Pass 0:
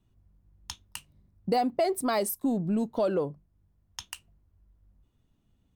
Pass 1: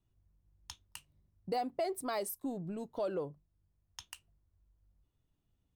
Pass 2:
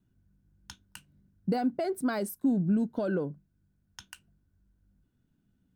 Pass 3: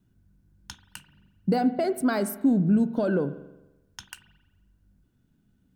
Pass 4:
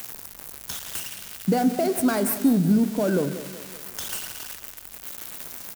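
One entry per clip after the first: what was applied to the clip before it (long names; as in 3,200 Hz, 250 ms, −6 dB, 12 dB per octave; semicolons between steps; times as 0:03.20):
parametric band 220 Hz −8 dB 0.35 octaves; level −8.5 dB
hollow resonant body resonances 210/1,500 Hz, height 17 dB, ringing for 30 ms
spring reverb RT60 1 s, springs 43 ms, chirp 70 ms, DRR 12 dB; level +5 dB
spike at every zero crossing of −23.5 dBFS; in parallel at −12 dB: sample-and-hold swept by an LFO 9×, swing 60% 0.54 Hz; on the sum: repeating echo 188 ms, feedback 48%, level −14 dB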